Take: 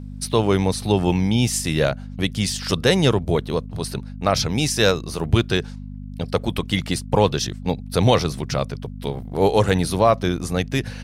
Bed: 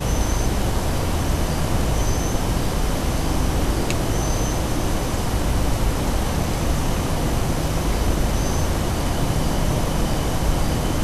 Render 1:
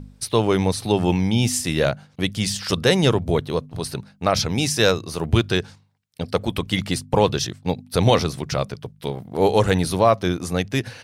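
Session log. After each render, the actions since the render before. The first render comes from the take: de-hum 50 Hz, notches 5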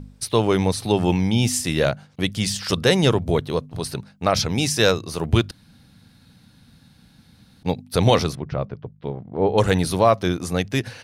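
5.51–7.63 room tone; 8.35–9.58 tape spacing loss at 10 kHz 44 dB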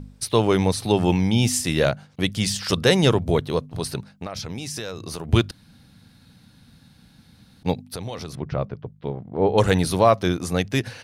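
4.12–5.29 compressor 16:1, threshold -27 dBFS; 7.78–8.35 compressor 5:1, threshold -30 dBFS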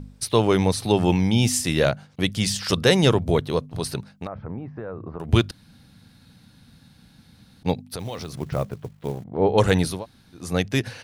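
4.27–5.2 LPF 1400 Hz 24 dB/oct; 7.99–9.24 companded quantiser 6-bit; 9.94–10.44 room tone, crossfade 0.24 s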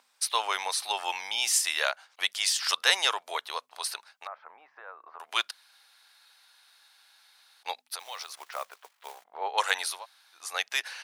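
HPF 850 Hz 24 dB/oct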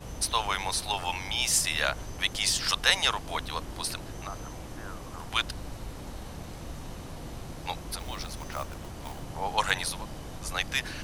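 add bed -19 dB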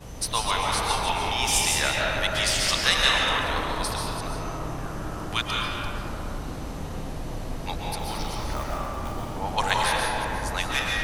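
reverse delay 0.183 s, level -9 dB; digital reverb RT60 4 s, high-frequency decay 0.25×, pre-delay 95 ms, DRR -4 dB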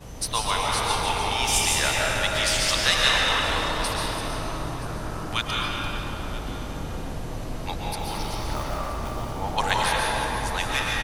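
echo 0.976 s -17.5 dB; plate-style reverb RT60 2.9 s, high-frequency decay 0.95×, pre-delay 0.105 s, DRR 6 dB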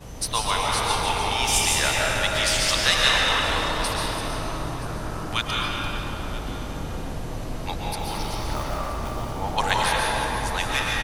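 gain +1 dB

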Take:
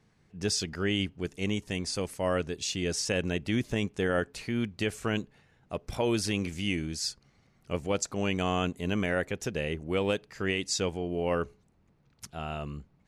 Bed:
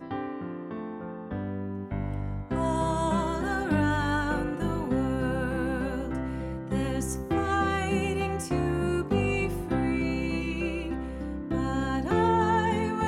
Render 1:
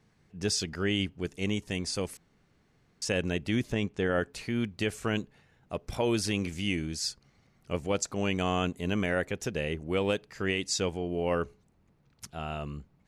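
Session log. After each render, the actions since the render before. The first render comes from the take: 2.17–3.02 room tone; 3.72–4.21 air absorption 70 m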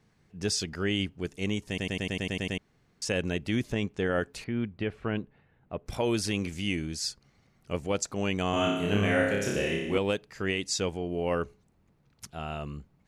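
1.68 stutter in place 0.10 s, 9 plays; 4.44–5.86 air absorption 400 m; 8.5–9.98 flutter echo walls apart 5.1 m, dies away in 0.92 s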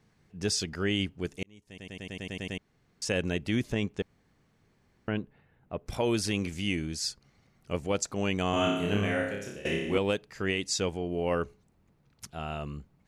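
1.43–3.12 fade in; 4.02–5.08 room tone; 8.77–9.65 fade out, to -18 dB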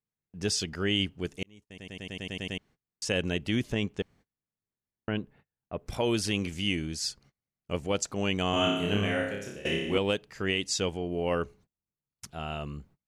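gate -55 dBFS, range -30 dB; dynamic EQ 3000 Hz, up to +6 dB, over -52 dBFS, Q 5.8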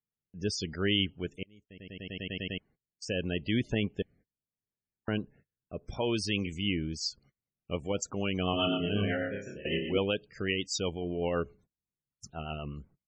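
rotary speaker horn 0.75 Hz, later 8 Hz, at 6.71; loudest bins only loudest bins 64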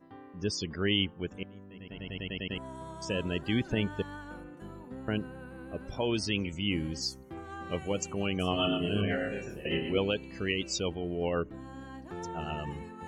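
add bed -16.5 dB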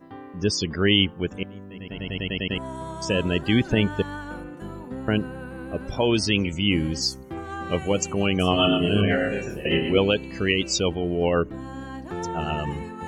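gain +9 dB

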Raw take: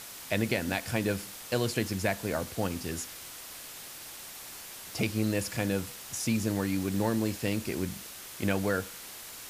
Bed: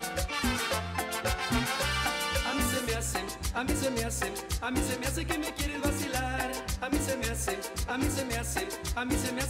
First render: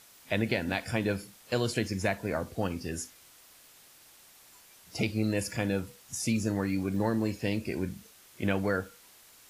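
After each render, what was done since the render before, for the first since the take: noise print and reduce 12 dB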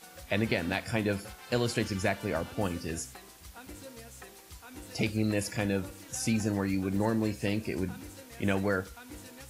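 add bed -17 dB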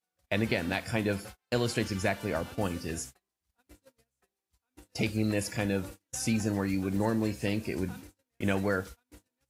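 gate -42 dBFS, range -37 dB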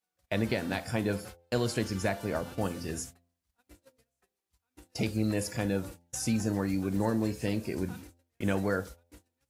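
de-hum 85.97 Hz, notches 10; dynamic EQ 2500 Hz, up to -5 dB, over -48 dBFS, Q 1.3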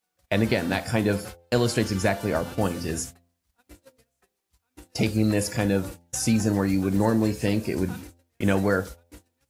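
gain +7 dB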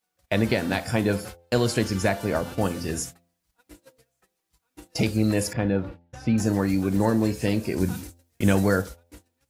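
3–5.01 comb 6.2 ms, depth 57%; 5.53–6.38 air absorption 360 m; 7.8–8.82 tone controls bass +4 dB, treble +7 dB

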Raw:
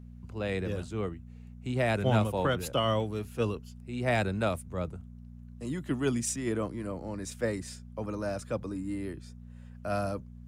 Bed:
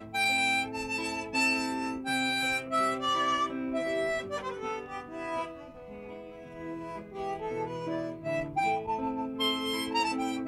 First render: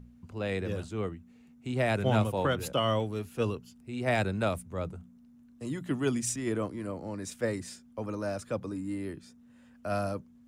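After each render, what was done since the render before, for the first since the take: de-hum 60 Hz, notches 3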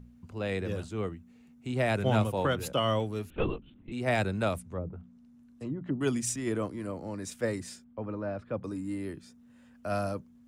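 3.3–3.92 LPC vocoder at 8 kHz whisper; 4.59–6.01 treble ducked by the level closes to 420 Hz, closed at -29 dBFS; 7.84–8.64 air absorption 420 m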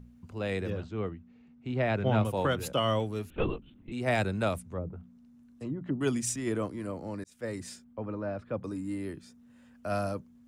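0.7–2.25 air absorption 180 m; 7.24–7.67 fade in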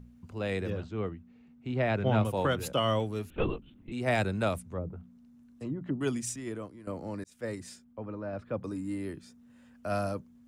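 5.81–6.87 fade out, to -14 dB; 7.55–8.33 gain -3 dB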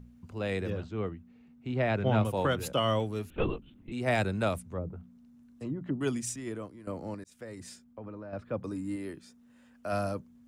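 7.14–8.33 compressor 10:1, threshold -38 dBFS; 8.96–9.93 bell 94 Hz -7 dB 2.1 oct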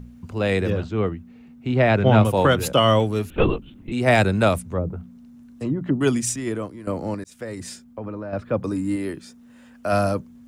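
gain +11 dB

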